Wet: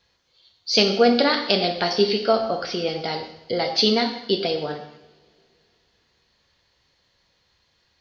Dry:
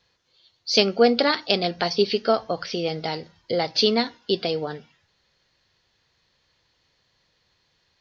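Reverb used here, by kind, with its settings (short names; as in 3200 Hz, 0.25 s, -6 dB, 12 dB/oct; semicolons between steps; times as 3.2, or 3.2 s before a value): two-slope reverb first 0.77 s, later 3.3 s, from -27 dB, DRR 3.5 dB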